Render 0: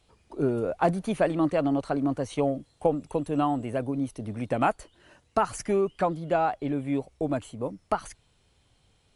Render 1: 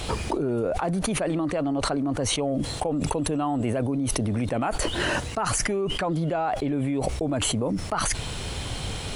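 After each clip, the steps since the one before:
envelope flattener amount 100%
level −6.5 dB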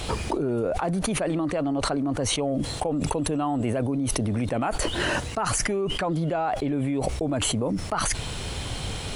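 no processing that can be heard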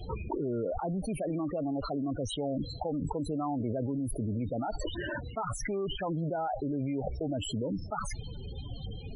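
spectral peaks only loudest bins 16
level −6.5 dB

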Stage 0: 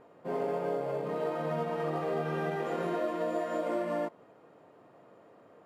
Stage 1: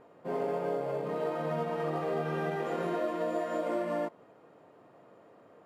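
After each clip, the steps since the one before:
no processing that can be heard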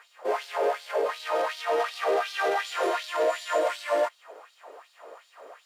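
mid-hump overdrive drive 17 dB, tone 4,100 Hz, clips at −20 dBFS
auto-filter high-pass sine 2.7 Hz 390–4,100 Hz
bass and treble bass −9 dB, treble +13 dB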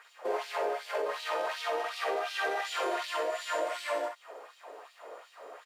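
downward compressor, threshold −28 dBFS, peak gain reduction 8 dB
on a send: ambience of single reflections 48 ms −6 dB, 62 ms −6 dB
on the sum: level −2 dB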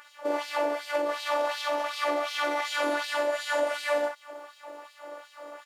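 phases set to zero 292 Hz
level +7 dB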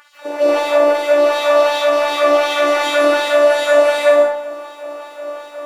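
comb and all-pass reverb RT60 0.68 s, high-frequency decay 0.5×, pre-delay 115 ms, DRR −9.5 dB
level +3 dB

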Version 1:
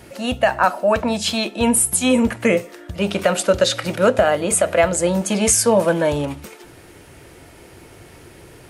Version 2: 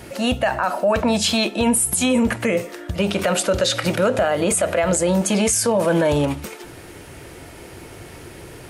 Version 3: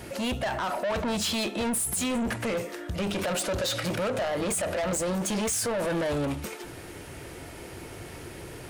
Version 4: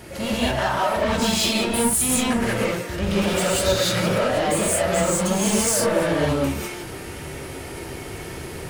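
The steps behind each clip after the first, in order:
brickwall limiter −14.5 dBFS, peak gain reduction 11 dB; level +4.5 dB
soft clipping −23 dBFS, distortion −8 dB; level −2.5 dB
reverb whose tail is shaped and stops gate 220 ms rising, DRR −7 dB

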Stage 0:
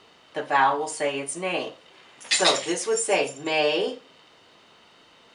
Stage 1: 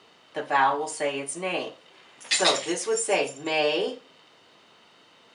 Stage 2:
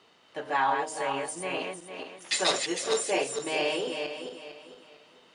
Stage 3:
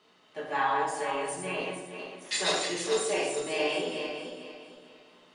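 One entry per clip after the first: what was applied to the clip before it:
high-pass filter 97 Hz; level −1.5 dB
feedback delay that plays each chunk backwards 226 ms, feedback 54%, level −4.5 dB; level −5 dB
rectangular room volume 220 cubic metres, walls mixed, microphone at 1.4 metres; level −5.5 dB

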